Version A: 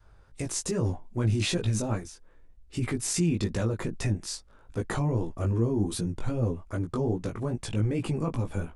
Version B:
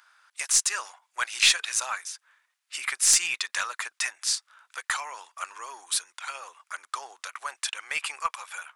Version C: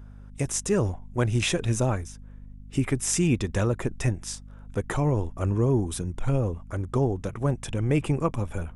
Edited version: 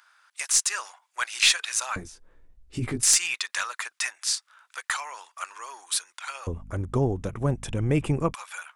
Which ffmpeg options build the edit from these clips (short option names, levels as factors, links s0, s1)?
-filter_complex "[1:a]asplit=3[s0][s1][s2];[s0]atrim=end=1.962[s3];[0:a]atrim=start=1.958:end=3.032[s4];[s1]atrim=start=3.028:end=6.472[s5];[2:a]atrim=start=6.468:end=8.342[s6];[s2]atrim=start=8.338[s7];[s3][s4]acrossfade=d=0.004:c1=hsin:c2=hsin[s8];[s8][s5]acrossfade=d=0.004:c1=hsin:c2=hsin[s9];[s9][s6]acrossfade=d=0.004:c1=hsin:c2=hsin[s10];[s10][s7]acrossfade=d=0.004:c1=hsin:c2=hsin"